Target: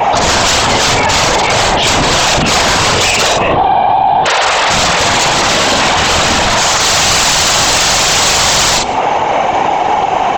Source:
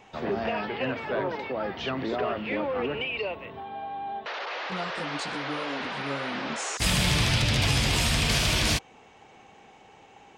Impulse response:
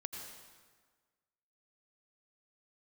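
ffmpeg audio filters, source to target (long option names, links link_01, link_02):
-filter_complex "[0:a]aresample=16000,aeval=exprs='(mod(21.1*val(0)+1,2)-1)/21.1':channel_layout=same,aresample=44100,afftfilt=real='hypot(re,im)*cos(2*PI*random(0))':imag='hypot(re,im)*sin(2*PI*random(1))':win_size=512:overlap=0.75,equalizer=frequency=780:width_type=o:width=1.8:gain=12.5,bandreject=frequency=60:width_type=h:width=6,bandreject=frequency=120:width_type=h:width=6,bandreject=frequency=180:width_type=h:width=6,bandreject=frequency=240:width_type=h:width=6,bandreject=frequency=300:width_type=h:width=6,bandreject=frequency=360:width_type=h:width=6,bandreject=frequency=420:width_type=h:width=6,bandreject=frequency=480:width_type=h:width=6,bandreject=frequency=540:width_type=h:width=6,asplit=2[link_01][link_02];[link_02]adelay=45,volume=-7.5dB[link_03];[link_01][link_03]amix=inputs=2:normalize=0,asplit=2[link_04][link_05];[link_05]adelay=151.6,volume=-29dB,highshelf=frequency=4000:gain=-3.41[link_06];[link_04][link_06]amix=inputs=2:normalize=0,acrossover=split=170|3000[link_07][link_08][link_09];[link_08]acompressor=threshold=-47dB:ratio=2.5[link_10];[link_07][link_10][link_09]amix=inputs=3:normalize=0,aeval=exprs='0.0631*sin(PI/2*1.58*val(0)/0.0631)':channel_layout=same,adynamicequalizer=threshold=0.00708:dfrequency=5900:dqfactor=1.1:tfrequency=5900:tqfactor=1.1:attack=5:release=100:ratio=0.375:range=2:mode=cutabove:tftype=bell,alimiter=level_in=34dB:limit=-1dB:release=50:level=0:latency=1,volume=-2dB"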